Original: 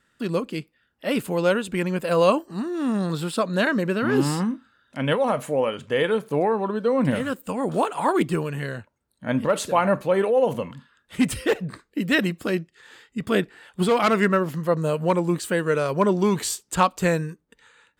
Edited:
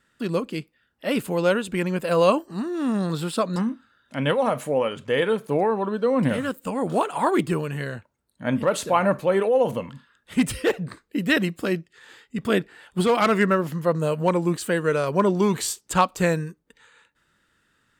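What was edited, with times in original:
3.56–4.38 s: delete

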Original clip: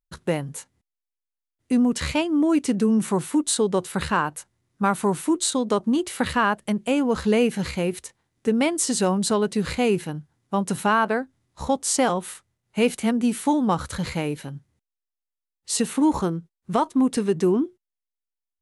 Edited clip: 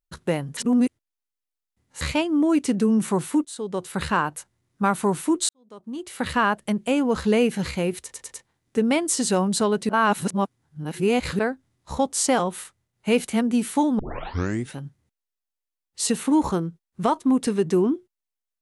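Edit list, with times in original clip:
0.57–2.01 s: reverse
3.45–4.08 s: fade in, from -21 dB
5.49–6.37 s: fade in quadratic
8.02 s: stutter 0.10 s, 4 plays
9.59–11.09 s: reverse
13.69 s: tape start 0.76 s

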